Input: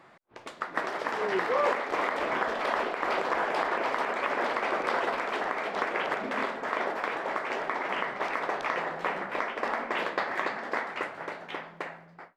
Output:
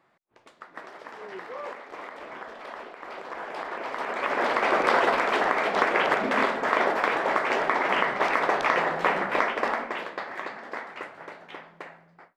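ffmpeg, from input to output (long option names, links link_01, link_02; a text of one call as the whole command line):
ffmpeg -i in.wav -af "volume=7dB,afade=type=in:start_time=3.12:duration=0.8:silence=0.446684,afade=type=in:start_time=3.92:duration=0.89:silence=0.281838,afade=type=out:start_time=9.45:duration=0.57:silence=0.266073" out.wav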